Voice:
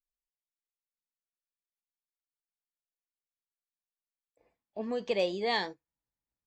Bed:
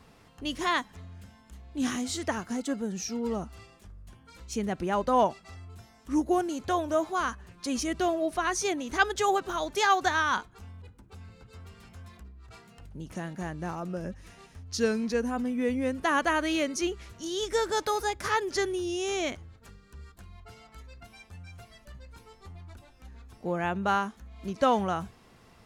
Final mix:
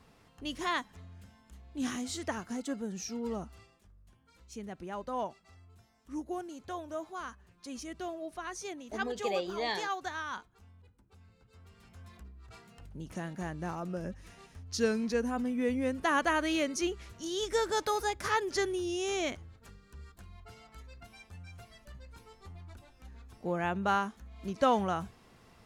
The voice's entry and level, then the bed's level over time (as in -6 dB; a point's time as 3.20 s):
4.15 s, -4.0 dB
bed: 3.47 s -5 dB
3.86 s -12 dB
11.42 s -12 dB
12.20 s -2.5 dB